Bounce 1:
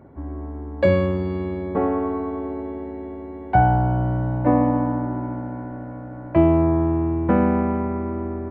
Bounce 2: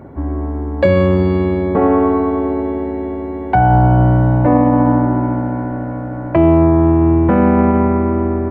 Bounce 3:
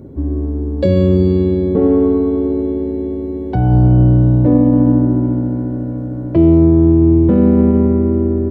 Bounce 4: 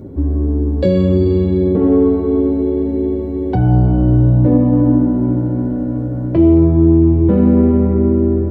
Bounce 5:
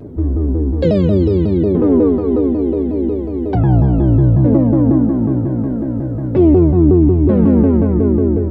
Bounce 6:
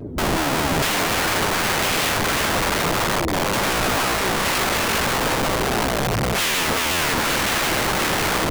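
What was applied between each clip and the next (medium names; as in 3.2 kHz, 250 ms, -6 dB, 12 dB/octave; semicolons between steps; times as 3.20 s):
loudness maximiser +13.5 dB; trim -2.5 dB
high-order bell 1.3 kHz -16 dB 2.3 oct; trim +2 dB
in parallel at +1 dB: peak limiter -12.5 dBFS, peak gain reduction 11 dB; on the sum: flange 0.55 Hz, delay 9.9 ms, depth 6.1 ms, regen -41%
vibrato with a chosen wave saw down 5.5 Hz, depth 250 cents
integer overflow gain 16 dB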